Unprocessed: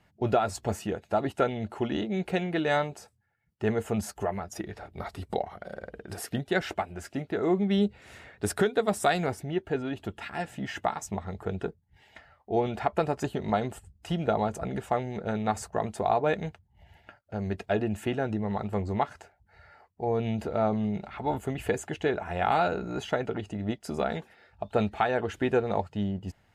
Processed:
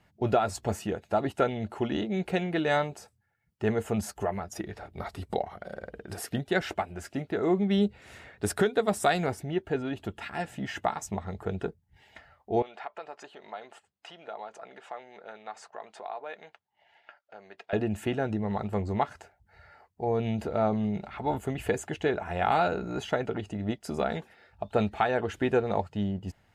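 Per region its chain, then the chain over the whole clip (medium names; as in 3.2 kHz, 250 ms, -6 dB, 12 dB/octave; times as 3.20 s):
12.62–17.73 s: compression 2:1, threshold -39 dBFS + band-pass 650–4500 Hz
whole clip: none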